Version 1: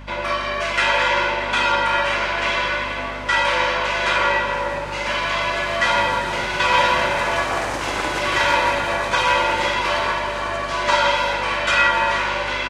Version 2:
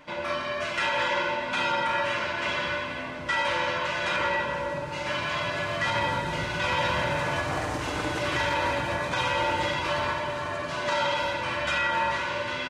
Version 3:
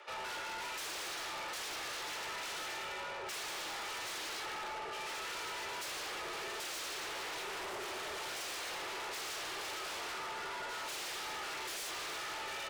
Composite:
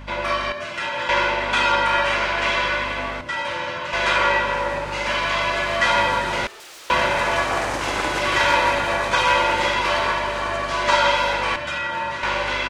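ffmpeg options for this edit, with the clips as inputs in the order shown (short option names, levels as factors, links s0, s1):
-filter_complex "[1:a]asplit=3[s0][s1][s2];[0:a]asplit=5[s3][s4][s5][s6][s7];[s3]atrim=end=0.522[s8];[s0]atrim=start=0.518:end=1.092[s9];[s4]atrim=start=1.088:end=3.212[s10];[s1]atrim=start=3.208:end=3.932[s11];[s5]atrim=start=3.928:end=6.472[s12];[2:a]atrim=start=6.468:end=6.902[s13];[s6]atrim=start=6.898:end=11.562[s14];[s2]atrim=start=11.558:end=12.232[s15];[s7]atrim=start=12.228[s16];[s8][s9]acrossfade=d=0.004:c1=hsin:c2=hsin[s17];[s17][s10]acrossfade=d=0.004:c1=hsin:c2=hsin[s18];[s18][s11]acrossfade=d=0.004:c1=hsin:c2=hsin[s19];[s19][s12]acrossfade=d=0.004:c1=hsin:c2=hsin[s20];[s20][s13]acrossfade=d=0.004:c1=hsin:c2=hsin[s21];[s21][s14]acrossfade=d=0.004:c1=hsin:c2=hsin[s22];[s22][s15]acrossfade=d=0.004:c1=hsin:c2=hsin[s23];[s23][s16]acrossfade=d=0.004:c1=hsin:c2=hsin"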